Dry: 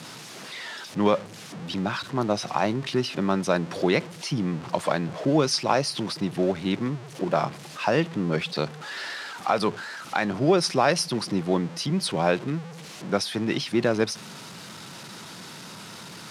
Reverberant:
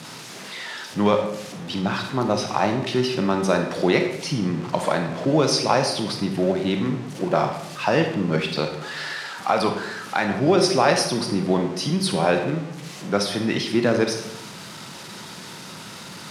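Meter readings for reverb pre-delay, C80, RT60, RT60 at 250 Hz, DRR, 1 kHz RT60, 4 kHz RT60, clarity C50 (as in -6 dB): 27 ms, 9.0 dB, 0.80 s, 1.0 s, 4.0 dB, 0.75 s, 0.65 s, 6.5 dB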